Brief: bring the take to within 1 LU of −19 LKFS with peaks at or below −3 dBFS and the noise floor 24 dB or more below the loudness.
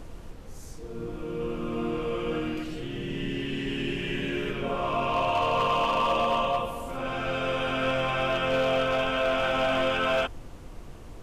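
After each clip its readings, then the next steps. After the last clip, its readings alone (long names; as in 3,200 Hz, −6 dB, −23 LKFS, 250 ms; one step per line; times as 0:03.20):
share of clipped samples 0.7%; peaks flattened at −19.0 dBFS; background noise floor −43 dBFS; target noise floor −52 dBFS; integrated loudness −27.5 LKFS; sample peak −19.0 dBFS; target loudness −19.0 LKFS
→ clipped peaks rebuilt −19 dBFS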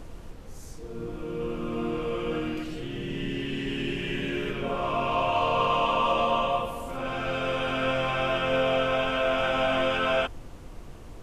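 share of clipped samples 0.0%; background noise floor −43 dBFS; target noise floor −52 dBFS
→ noise reduction from a noise print 9 dB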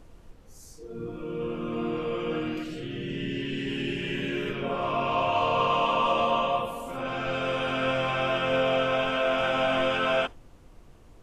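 background noise floor −52 dBFS; integrated loudness −27.5 LKFS; sample peak −12.0 dBFS; target loudness −19.0 LKFS
→ level +8.5 dB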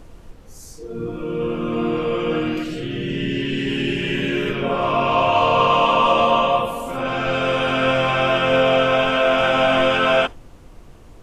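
integrated loudness −19.0 LKFS; sample peak −3.5 dBFS; background noise floor −44 dBFS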